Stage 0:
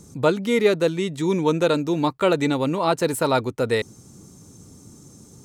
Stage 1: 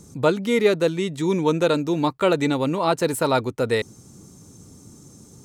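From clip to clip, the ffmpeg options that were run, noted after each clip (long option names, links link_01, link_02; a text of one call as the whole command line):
ffmpeg -i in.wav -af anull out.wav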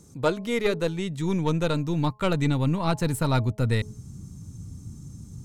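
ffmpeg -i in.wav -af "aeval=exprs='0.501*(cos(1*acos(clip(val(0)/0.501,-1,1)))-cos(1*PI/2))+0.0501*(cos(3*acos(clip(val(0)/0.501,-1,1)))-cos(3*PI/2))+0.0126*(cos(4*acos(clip(val(0)/0.501,-1,1)))-cos(4*PI/2))':channel_layout=same,bandreject=frequency=212:width_type=h:width=4,bandreject=frequency=424:width_type=h:width=4,bandreject=frequency=636:width_type=h:width=4,bandreject=frequency=848:width_type=h:width=4,bandreject=frequency=1060:width_type=h:width=4,asubboost=boost=11.5:cutoff=140,volume=-2.5dB" out.wav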